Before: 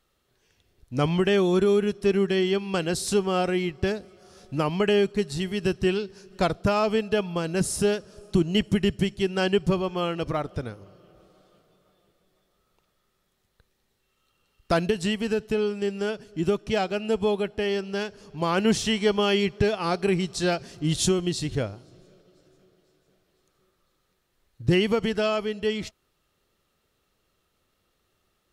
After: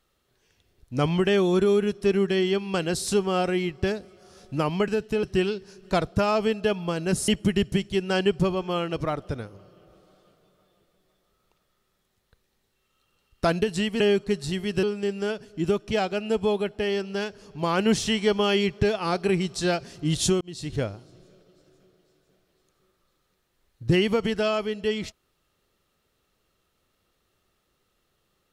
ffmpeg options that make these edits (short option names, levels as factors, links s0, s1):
-filter_complex "[0:a]asplit=7[s0][s1][s2][s3][s4][s5][s6];[s0]atrim=end=4.882[s7];[s1]atrim=start=15.268:end=15.622[s8];[s2]atrim=start=5.708:end=7.762[s9];[s3]atrim=start=8.548:end=15.272[s10];[s4]atrim=start=4.878:end=5.712[s11];[s5]atrim=start=15.618:end=21.2,asetpts=PTS-STARTPTS,afade=t=out:st=5.578:d=0.004:c=hsin[s12];[s6]atrim=start=21.2,asetpts=PTS-STARTPTS,afade=t=in:d=0.39[s13];[s7][s8]acrossfade=d=0.004:c1=hsin:c2=hsin[s14];[s14][s9]acrossfade=d=0.004:c1=hsin:c2=hsin[s15];[s15][s10]acrossfade=d=0.004:c1=hsin:c2=hsin[s16];[s16][s11]acrossfade=d=0.004:c1=hsin:c2=hsin[s17];[s12][s13]concat=n=2:v=0:a=1[s18];[s17][s18]acrossfade=d=0.004:c1=hsin:c2=hsin"